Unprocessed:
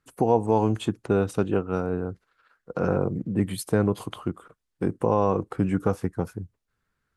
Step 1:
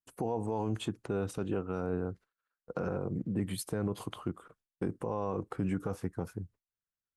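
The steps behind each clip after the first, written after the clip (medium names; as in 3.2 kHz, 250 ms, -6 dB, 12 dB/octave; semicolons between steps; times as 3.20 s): gate with hold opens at -45 dBFS; peak limiter -18 dBFS, peak gain reduction 10 dB; trim -5 dB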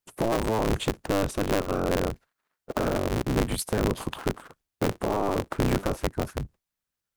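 cycle switcher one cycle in 3, inverted; trim +8 dB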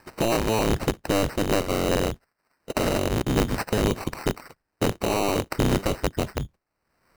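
upward compressor, threshold -39 dBFS; sample-and-hold 13×; trim +2.5 dB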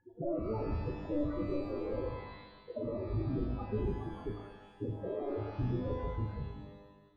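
loudest bins only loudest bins 4; flutter echo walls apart 6.4 m, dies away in 0.22 s; pitch-shifted reverb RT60 1.2 s, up +12 st, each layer -8 dB, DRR 5.5 dB; trim -7 dB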